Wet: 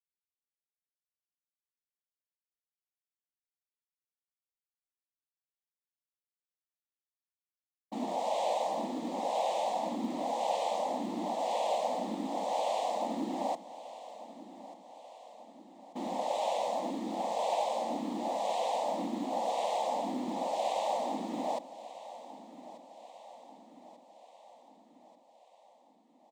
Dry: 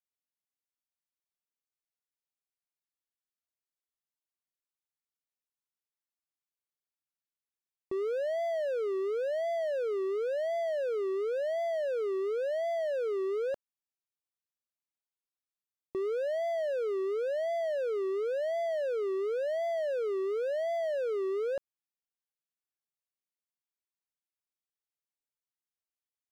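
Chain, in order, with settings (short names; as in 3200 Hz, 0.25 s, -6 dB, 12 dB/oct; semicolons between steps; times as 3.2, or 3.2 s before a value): low-pass opened by the level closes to 310 Hz, open at -34 dBFS; tilt +3.5 dB/oct; noise vocoder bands 6; fixed phaser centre 410 Hz, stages 6; companded quantiser 8-bit; on a send: feedback echo 1.189 s, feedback 57%, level -16 dB; on the sum: gain +3.5 dB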